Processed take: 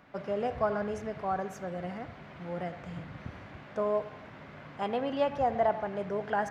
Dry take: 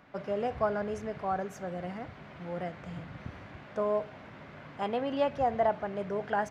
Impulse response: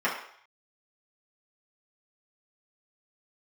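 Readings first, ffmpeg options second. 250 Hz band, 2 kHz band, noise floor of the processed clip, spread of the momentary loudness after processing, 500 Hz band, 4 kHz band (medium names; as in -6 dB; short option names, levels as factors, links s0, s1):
0.0 dB, +0.5 dB, -49 dBFS, 16 LU, 0.0 dB, 0.0 dB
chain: -filter_complex "[0:a]asplit=2[s0][s1];[1:a]atrim=start_sample=2205,adelay=82[s2];[s1][s2]afir=irnorm=-1:irlink=0,volume=0.0531[s3];[s0][s3]amix=inputs=2:normalize=0"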